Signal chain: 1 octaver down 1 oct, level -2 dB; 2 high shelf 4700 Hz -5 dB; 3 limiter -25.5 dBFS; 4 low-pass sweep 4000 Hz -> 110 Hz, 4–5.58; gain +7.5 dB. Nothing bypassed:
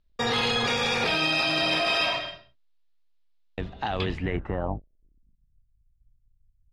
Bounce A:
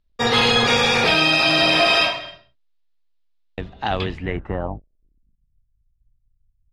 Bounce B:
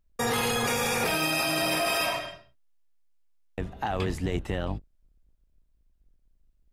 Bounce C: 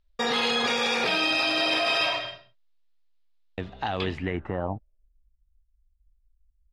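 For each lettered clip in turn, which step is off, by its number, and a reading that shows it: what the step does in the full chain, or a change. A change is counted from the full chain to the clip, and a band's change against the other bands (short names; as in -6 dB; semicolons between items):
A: 3, mean gain reduction 5.0 dB; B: 4, 8 kHz band +9.5 dB; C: 1, 125 Hz band -3.5 dB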